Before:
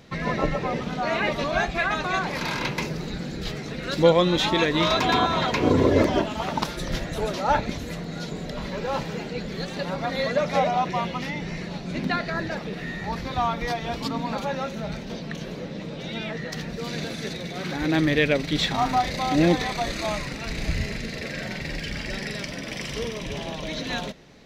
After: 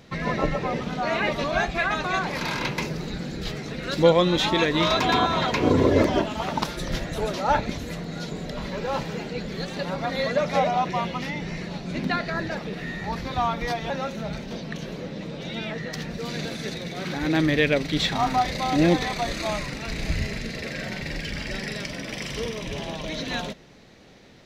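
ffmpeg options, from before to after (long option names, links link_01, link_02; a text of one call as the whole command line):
ffmpeg -i in.wav -filter_complex "[0:a]asplit=2[link_01][link_02];[link_01]atrim=end=13.902[link_03];[link_02]atrim=start=14.488[link_04];[link_03][link_04]acrossfade=duration=0.004:curve1=hsin:curve2=hsin" out.wav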